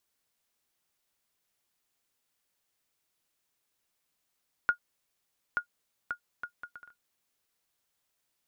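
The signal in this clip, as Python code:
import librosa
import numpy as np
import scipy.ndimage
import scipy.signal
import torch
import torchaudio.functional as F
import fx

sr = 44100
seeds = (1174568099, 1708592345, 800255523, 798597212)

y = fx.bouncing_ball(sr, first_gap_s=0.88, ratio=0.61, hz=1430.0, decay_ms=94.0, level_db=-15.0)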